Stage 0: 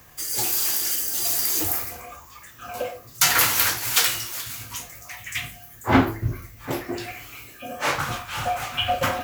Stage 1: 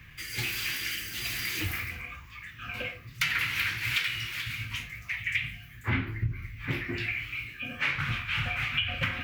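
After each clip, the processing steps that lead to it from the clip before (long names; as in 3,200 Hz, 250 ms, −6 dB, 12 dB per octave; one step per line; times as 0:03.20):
drawn EQ curve 150 Hz 0 dB, 720 Hz −22 dB, 2,300 Hz +5 dB, 7,000 Hz −21 dB
downward compressor 8 to 1, threshold −30 dBFS, peak gain reduction 13.5 dB
level +4.5 dB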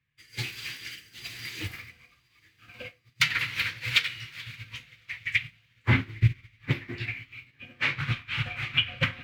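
octave-band graphic EQ 125/250/500/1,000/2,000/4,000/8,000 Hz +11/+5/+9/+5/+5/+10/+5 dB
feedback delay with all-pass diffusion 982 ms, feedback 56%, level −13 dB
expander for the loud parts 2.5 to 1, over −39 dBFS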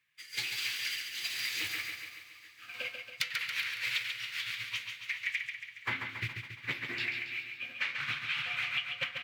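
high-pass filter 1,400 Hz 6 dB per octave
downward compressor 16 to 1, threshold −38 dBFS, peak gain reduction 21 dB
on a send: repeating echo 139 ms, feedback 57%, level −6 dB
on the sum: level +6.5 dB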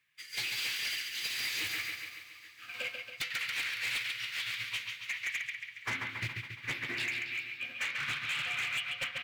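gain into a clipping stage and back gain 31.5 dB
level +1.5 dB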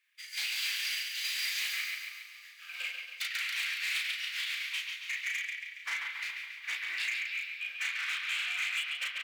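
high-pass filter 1,400 Hz 12 dB per octave
double-tracking delay 35 ms −2.5 dB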